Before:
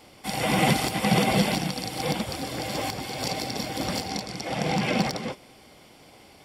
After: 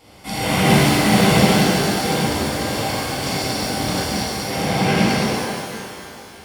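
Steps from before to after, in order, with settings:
parametric band 83 Hz +8 dB 0.72 octaves
reverb with rising layers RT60 2.2 s, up +12 semitones, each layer −8 dB, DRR −8 dB
level −1.5 dB

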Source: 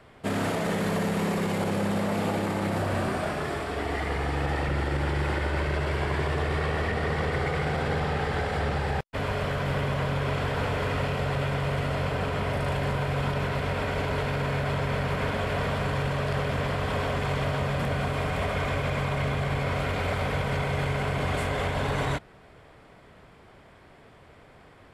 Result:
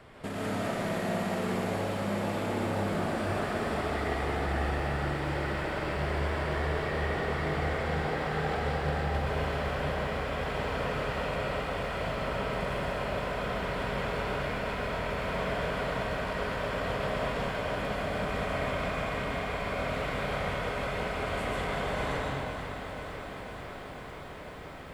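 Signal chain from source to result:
downward compressor 3 to 1, threshold −37 dBFS, peak gain reduction 10 dB
comb and all-pass reverb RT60 2.2 s, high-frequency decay 0.7×, pre-delay 85 ms, DRR −4.5 dB
feedback echo at a low word length 496 ms, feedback 80%, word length 10 bits, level −9.5 dB

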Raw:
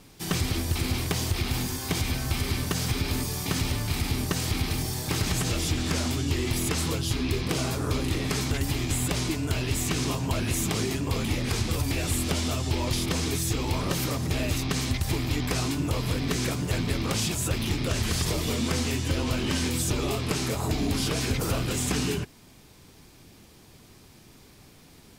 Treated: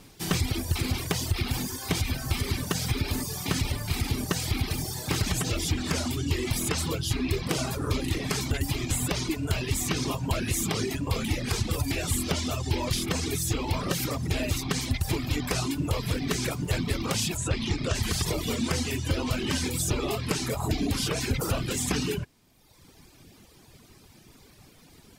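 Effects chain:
reverb reduction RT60 1.2 s
0:17.37–0:17.95: low-pass filter 8,400 Hz 24 dB per octave
level +1.5 dB

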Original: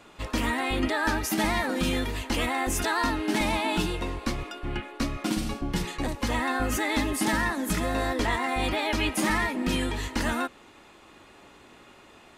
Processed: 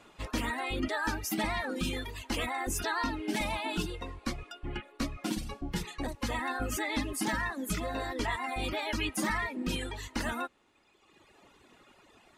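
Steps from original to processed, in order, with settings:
reverb reduction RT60 1.6 s
level −4 dB
MP3 64 kbit/s 48,000 Hz

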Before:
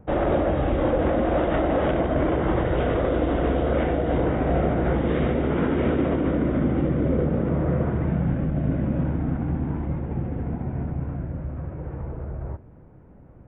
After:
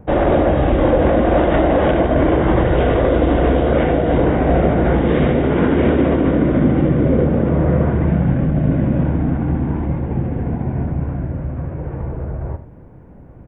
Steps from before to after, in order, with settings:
notch filter 1,300 Hz, Q 15
on a send: single-tap delay 79 ms −12.5 dB
on the sum: level +7.5 dB

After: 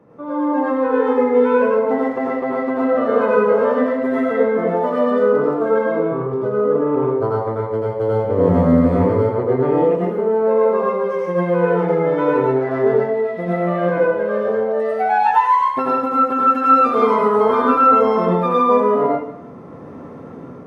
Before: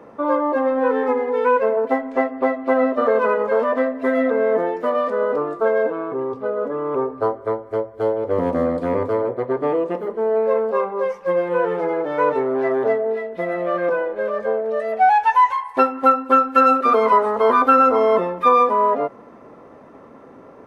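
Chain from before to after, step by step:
brickwall limiter −9.5 dBFS, peak gain reduction 7.5 dB
automatic gain control gain up to 11 dB
parametric band 130 Hz +14 dB 1.9 octaves
dense smooth reverb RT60 0.64 s, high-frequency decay 1×, pre-delay 75 ms, DRR −4.5 dB
level −12.5 dB

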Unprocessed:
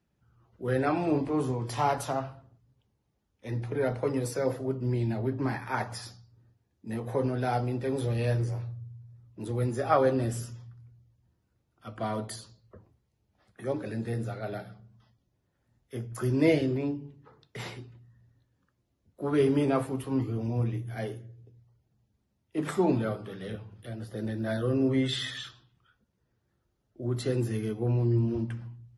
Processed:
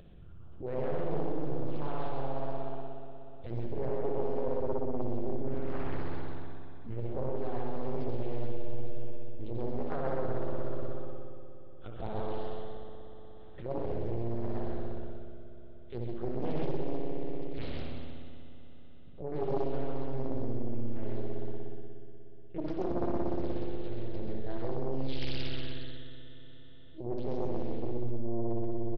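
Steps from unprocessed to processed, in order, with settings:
linear-prediction vocoder at 8 kHz pitch kept
dynamic equaliser 350 Hz, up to +6 dB, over −42 dBFS, Q 2.7
spring reverb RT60 2.4 s, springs 60 ms, chirp 70 ms, DRR −2.5 dB
reversed playback
downward compressor 5 to 1, threshold −26 dBFS, peak gain reduction 14 dB
reversed playback
octave-band graphic EQ 250/1,000/2,000 Hz −5/−9/−11 dB
on a send: single-tap delay 132 ms −3.5 dB
on the sum: upward compression, threshold −35 dBFS
highs frequency-modulated by the lows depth 1 ms

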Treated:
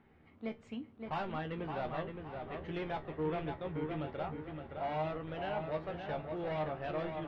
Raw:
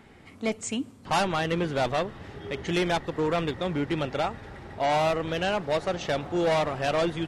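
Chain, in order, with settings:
high-frequency loss of the air 370 metres
tuned comb filter 77 Hz, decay 0.17 s, harmonics all, mix 80%
delay with a low-pass on its return 567 ms, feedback 37%, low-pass 3,700 Hz, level −5.5 dB
level −6.5 dB

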